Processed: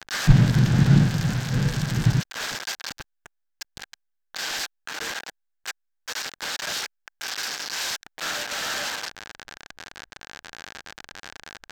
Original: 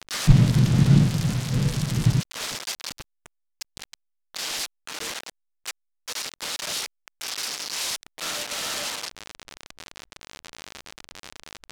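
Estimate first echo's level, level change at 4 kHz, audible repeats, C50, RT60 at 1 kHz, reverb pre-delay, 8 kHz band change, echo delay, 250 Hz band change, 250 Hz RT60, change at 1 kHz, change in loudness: none, 0.0 dB, none, none, none, none, -2.0 dB, none, 0.0 dB, none, +2.5 dB, 0.0 dB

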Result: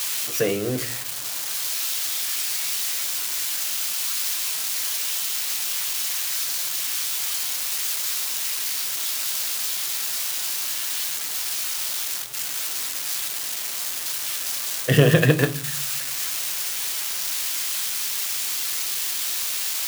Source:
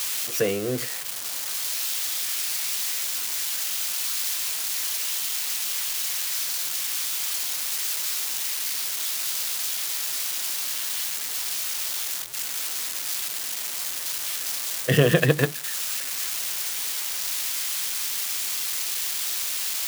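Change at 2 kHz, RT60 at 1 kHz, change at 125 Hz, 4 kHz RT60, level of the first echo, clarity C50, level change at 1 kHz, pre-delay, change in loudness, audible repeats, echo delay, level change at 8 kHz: +1.5 dB, 0.40 s, +4.0 dB, 0.35 s, none, 16.5 dB, +2.0 dB, 7 ms, +2.0 dB, none, none, +1.5 dB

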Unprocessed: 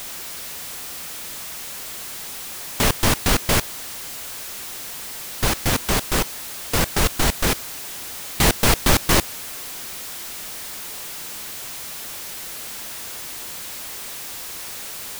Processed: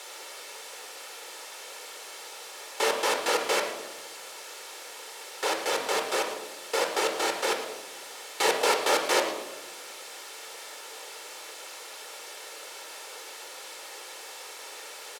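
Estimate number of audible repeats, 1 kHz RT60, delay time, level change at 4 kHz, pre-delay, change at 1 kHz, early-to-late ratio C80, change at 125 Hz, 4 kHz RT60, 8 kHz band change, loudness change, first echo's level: 1, 0.85 s, 0.111 s, -6.0 dB, 25 ms, -2.0 dB, 8.5 dB, under -30 dB, 0.75 s, -9.0 dB, -7.0 dB, -15.0 dB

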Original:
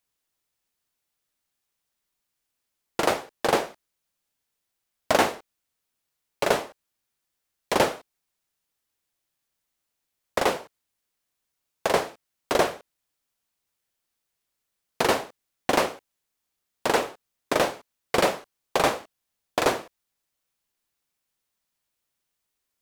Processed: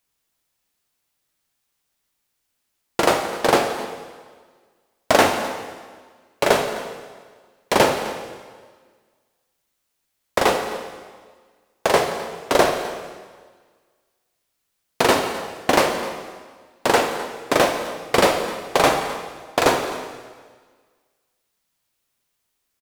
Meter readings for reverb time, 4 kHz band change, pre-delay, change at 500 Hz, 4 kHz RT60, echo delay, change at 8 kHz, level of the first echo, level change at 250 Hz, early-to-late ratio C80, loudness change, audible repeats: 1.6 s, +6.5 dB, 6 ms, +6.0 dB, 1.5 s, 0.257 s, +6.0 dB, -17.5 dB, +6.5 dB, 8.0 dB, +5.0 dB, 1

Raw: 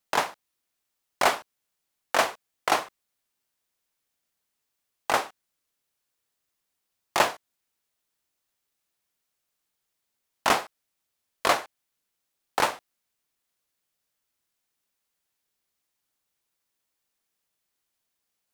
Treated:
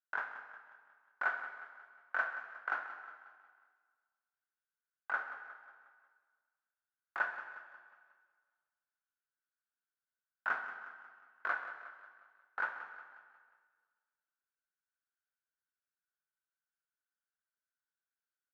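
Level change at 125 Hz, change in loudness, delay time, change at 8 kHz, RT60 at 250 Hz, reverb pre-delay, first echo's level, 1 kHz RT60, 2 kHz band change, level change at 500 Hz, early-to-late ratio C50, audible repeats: under -25 dB, -13.0 dB, 0.18 s, under -40 dB, 1.7 s, 5 ms, -13.0 dB, 1.7 s, -5.0 dB, -22.5 dB, 7.0 dB, 4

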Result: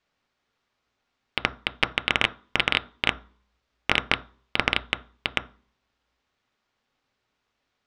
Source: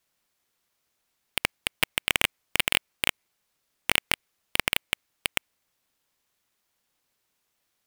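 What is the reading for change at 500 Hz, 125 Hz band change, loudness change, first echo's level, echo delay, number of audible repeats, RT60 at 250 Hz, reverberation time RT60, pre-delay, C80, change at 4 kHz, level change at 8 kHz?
+4.0 dB, +5.0 dB, +1.5 dB, none, none, none, 0.55 s, 0.40 s, 3 ms, 24.0 dB, +1.0 dB, -14.5 dB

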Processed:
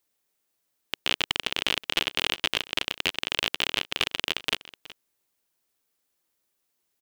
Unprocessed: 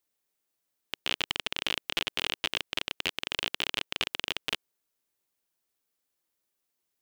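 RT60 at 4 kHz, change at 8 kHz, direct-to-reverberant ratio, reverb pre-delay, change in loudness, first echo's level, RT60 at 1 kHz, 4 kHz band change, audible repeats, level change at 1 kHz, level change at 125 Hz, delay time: none, +4.5 dB, none, none, +4.5 dB, -18.5 dB, none, +4.5 dB, 1, +4.5 dB, +4.5 dB, 0.371 s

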